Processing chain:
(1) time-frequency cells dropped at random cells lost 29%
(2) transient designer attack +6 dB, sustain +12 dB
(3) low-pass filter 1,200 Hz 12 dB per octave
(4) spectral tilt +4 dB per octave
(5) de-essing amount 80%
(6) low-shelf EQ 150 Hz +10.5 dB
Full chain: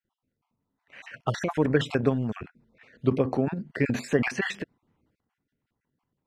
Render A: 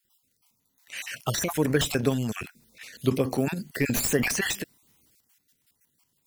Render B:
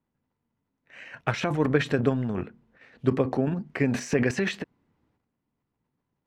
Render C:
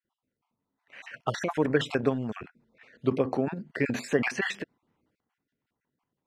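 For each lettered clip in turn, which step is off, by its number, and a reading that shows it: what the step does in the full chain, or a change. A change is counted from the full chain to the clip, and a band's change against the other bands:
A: 3, 8 kHz band +16.5 dB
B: 1, 8 kHz band +2.5 dB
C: 6, 125 Hz band −5.5 dB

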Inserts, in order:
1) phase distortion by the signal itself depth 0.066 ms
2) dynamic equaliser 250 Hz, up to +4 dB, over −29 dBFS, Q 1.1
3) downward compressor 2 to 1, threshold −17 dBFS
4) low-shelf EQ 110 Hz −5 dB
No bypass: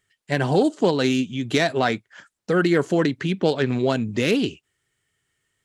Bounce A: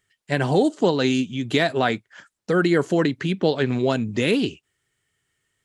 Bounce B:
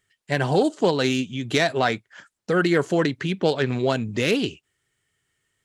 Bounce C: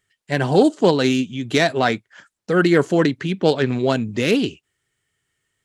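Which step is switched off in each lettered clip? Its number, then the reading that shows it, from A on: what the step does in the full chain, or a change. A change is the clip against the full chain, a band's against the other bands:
1, 8 kHz band −2.0 dB
2, 250 Hz band −3.0 dB
3, change in integrated loudness +3.0 LU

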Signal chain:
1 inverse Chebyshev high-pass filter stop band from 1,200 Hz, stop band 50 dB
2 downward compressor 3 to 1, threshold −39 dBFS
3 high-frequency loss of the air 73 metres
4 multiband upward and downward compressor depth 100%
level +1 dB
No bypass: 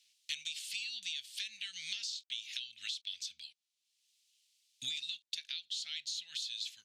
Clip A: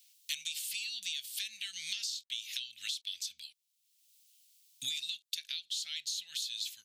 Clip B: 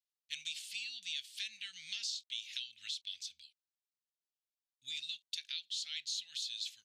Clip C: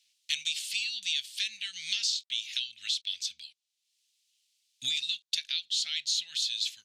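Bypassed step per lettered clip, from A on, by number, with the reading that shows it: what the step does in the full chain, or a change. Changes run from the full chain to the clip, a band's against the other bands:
3, change in integrated loudness +2.5 LU
4, change in momentary loudness spread +3 LU
2, average gain reduction 6.5 dB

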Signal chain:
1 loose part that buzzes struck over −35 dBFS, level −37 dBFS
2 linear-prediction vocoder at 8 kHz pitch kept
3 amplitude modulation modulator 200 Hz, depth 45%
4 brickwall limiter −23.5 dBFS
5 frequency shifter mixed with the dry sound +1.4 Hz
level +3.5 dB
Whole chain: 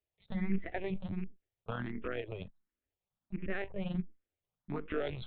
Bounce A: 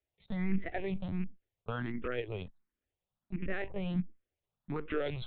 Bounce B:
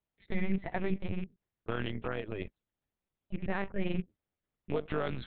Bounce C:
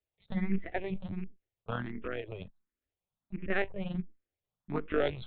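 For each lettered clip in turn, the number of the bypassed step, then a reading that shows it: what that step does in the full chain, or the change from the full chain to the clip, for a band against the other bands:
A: 3, change in momentary loudness spread −1 LU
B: 5, change in crest factor −2.0 dB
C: 4, change in crest factor +3.0 dB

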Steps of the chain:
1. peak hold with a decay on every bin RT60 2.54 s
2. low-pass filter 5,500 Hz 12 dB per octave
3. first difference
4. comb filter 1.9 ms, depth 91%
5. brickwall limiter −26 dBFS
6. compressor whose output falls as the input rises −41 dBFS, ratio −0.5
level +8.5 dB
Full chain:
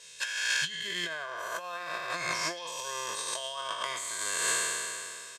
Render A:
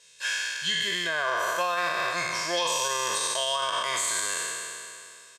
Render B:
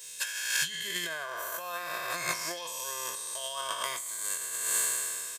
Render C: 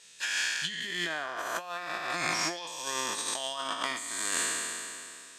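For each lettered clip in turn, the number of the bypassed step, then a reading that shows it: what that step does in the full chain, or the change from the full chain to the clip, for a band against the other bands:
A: 6, change in crest factor −9.5 dB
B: 2, 8 kHz band +4.0 dB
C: 4, 250 Hz band +5.5 dB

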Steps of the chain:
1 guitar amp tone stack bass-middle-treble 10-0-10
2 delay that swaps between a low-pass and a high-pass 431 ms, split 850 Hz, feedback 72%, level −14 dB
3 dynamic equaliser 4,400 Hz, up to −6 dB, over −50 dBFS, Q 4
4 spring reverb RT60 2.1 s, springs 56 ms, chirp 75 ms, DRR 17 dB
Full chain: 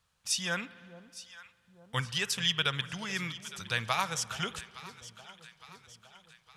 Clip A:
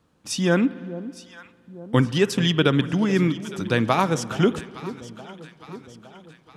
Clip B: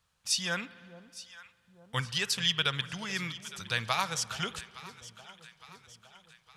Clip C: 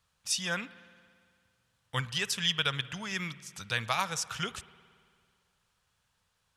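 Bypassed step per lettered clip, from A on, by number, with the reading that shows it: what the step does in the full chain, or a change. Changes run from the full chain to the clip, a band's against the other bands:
1, 250 Hz band +14.5 dB
3, change in momentary loudness spread −1 LU
2, change in momentary loudness spread −12 LU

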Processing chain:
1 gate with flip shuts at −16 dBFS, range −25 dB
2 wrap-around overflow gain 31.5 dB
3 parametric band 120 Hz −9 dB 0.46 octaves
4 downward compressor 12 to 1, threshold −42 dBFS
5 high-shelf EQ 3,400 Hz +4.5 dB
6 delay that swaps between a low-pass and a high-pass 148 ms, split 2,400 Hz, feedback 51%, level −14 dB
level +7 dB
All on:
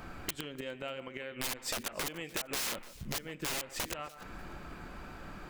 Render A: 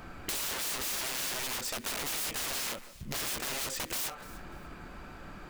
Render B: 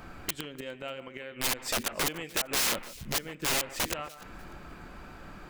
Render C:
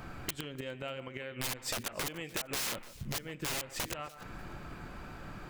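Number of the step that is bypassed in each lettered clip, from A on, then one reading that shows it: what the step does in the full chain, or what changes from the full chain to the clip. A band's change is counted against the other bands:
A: 1, change in momentary loudness spread +3 LU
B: 4, average gain reduction 2.5 dB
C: 3, 125 Hz band +4.0 dB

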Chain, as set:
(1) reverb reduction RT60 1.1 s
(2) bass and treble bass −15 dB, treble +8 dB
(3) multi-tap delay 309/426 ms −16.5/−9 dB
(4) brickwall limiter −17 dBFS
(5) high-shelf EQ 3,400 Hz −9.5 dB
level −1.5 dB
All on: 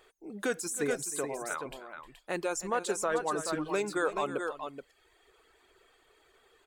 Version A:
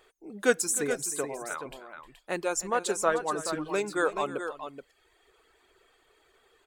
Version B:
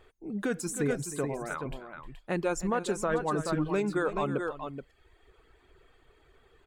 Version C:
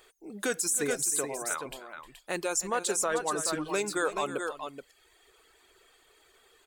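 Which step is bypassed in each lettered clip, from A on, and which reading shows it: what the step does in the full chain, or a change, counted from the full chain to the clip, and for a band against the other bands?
4, change in crest factor +7.0 dB
2, 125 Hz band +12.0 dB
5, 8 kHz band +7.5 dB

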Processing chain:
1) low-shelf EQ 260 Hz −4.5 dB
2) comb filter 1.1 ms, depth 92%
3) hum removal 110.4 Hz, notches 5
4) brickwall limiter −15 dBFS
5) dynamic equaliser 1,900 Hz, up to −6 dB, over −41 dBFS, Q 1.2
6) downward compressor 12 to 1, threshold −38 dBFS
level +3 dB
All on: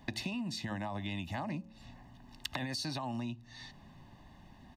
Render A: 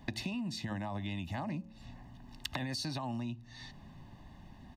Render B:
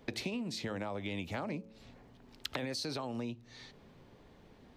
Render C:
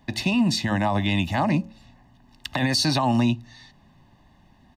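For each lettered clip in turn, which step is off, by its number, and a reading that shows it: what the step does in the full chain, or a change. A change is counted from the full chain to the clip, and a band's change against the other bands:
1, 125 Hz band +2.5 dB
2, 500 Hz band +6.0 dB
6, average gain reduction 10.0 dB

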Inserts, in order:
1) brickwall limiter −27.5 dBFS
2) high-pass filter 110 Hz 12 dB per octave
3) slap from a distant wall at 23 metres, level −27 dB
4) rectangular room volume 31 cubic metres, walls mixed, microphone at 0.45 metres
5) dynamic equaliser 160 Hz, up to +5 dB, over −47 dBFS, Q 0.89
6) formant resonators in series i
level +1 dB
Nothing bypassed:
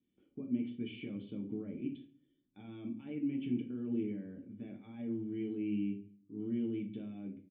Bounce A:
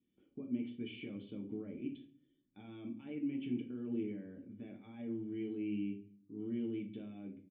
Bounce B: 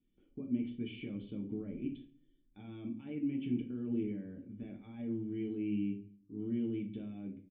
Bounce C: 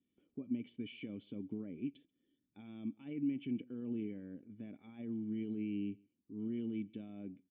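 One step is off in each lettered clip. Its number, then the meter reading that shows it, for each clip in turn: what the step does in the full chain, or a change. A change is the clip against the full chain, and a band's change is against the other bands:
5, 2 kHz band +3.0 dB
2, 125 Hz band +2.0 dB
4, 2 kHz band +2.0 dB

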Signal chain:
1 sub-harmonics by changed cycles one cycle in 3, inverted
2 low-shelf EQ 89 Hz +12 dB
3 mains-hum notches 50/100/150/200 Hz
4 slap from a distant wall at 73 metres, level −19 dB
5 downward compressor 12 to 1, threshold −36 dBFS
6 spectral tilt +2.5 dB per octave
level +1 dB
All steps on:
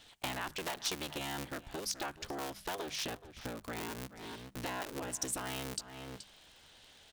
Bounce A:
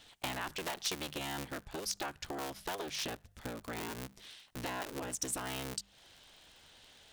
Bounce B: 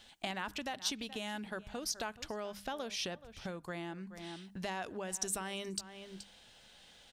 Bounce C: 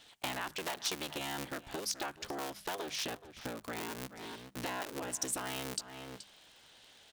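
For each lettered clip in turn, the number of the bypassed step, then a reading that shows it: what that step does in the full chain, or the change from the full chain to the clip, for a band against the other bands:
4, change in momentary loudness spread +8 LU
1, 125 Hz band −1.5 dB
2, 125 Hz band −3.5 dB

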